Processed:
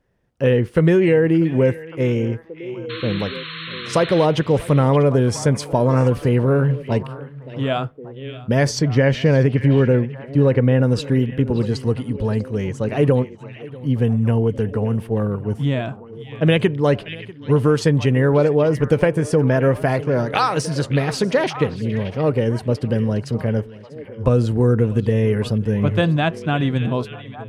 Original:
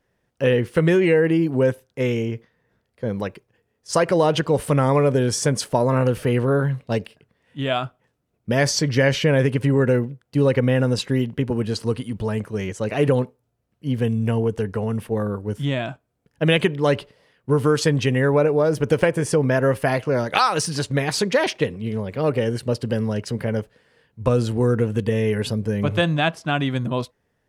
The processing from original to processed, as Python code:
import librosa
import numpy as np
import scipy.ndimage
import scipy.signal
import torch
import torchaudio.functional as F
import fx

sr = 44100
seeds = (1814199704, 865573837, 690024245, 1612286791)

y = fx.tilt_eq(x, sr, slope=-1.5)
y = y + 10.0 ** (-20.5 / 20.0) * np.pad(y, (int(643 * sr / 1000.0), 0))[:len(y)]
y = fx.spec_paint(y, sr, seeds[0], shape='noise', start_s=2.89, length_s=1.37, low_hz=1000.0, high_hz=4300.0, level_db=-33.0)
y = fx.high_shelf(y, sr, hz=5700.0, db=-8.5, at=(8.79, 10.83))
y = fx.echo_stepped(y, sr, ms=576, hz=2600.0, octaves=-1.4, feedback_pct=70, wet_db=-9)